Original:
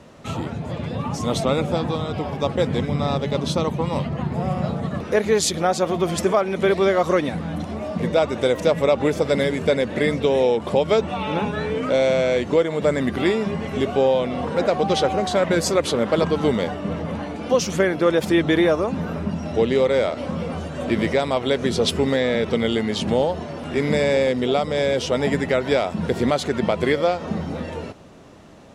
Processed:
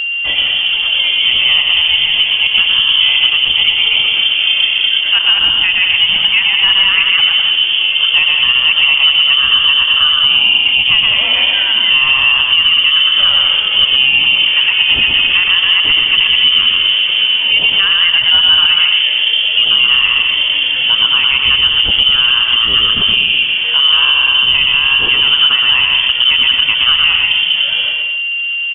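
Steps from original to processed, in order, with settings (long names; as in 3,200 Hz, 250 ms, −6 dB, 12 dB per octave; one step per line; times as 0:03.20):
parametric band 290 Hz +11 dB 0.39 octaves
on a send: bouncing-ball delay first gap 120 ms, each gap 0.7×, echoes 5
on the sum: steady tone 520 Hz −24 dBFS
in parallel at +2 dB: downward compressor 6 to 1, threshold −20 dBFS, peak gain reduction 12.5 dB
on the sum: voice inversion scrambler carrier 3,300 Hz
brickwall limiter −3.5 dBFS, peak gain reduction 5.5 dB
level +2 dB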